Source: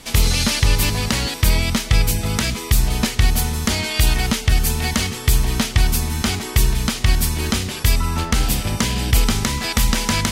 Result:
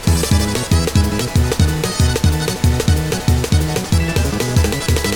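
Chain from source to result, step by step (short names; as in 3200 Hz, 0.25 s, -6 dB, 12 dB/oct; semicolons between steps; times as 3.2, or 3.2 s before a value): added noise pink -31 dBFS; air absorption 130 m; speed mistake 7.5 ips tape played at 15 ips; gain +2.5 dB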